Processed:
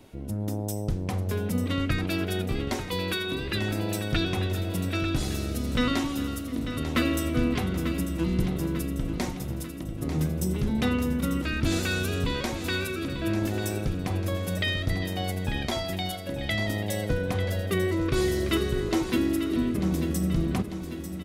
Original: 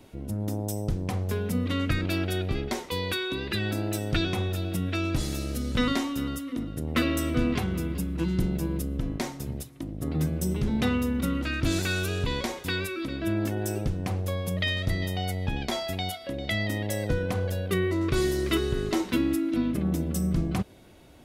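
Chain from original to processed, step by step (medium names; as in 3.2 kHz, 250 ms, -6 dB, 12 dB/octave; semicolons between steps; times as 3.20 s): feedback delay 894 ms, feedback 54%, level -10 dB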